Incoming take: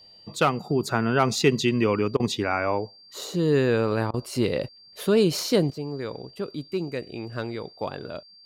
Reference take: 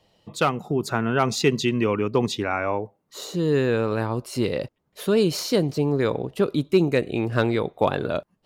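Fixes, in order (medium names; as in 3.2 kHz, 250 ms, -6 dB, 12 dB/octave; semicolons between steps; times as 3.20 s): band-stop 4.7 kHz, Q 30; interpolate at 2.17/4.11 s, 27 ms; trim 0 dB, from 5.70 s +10 dB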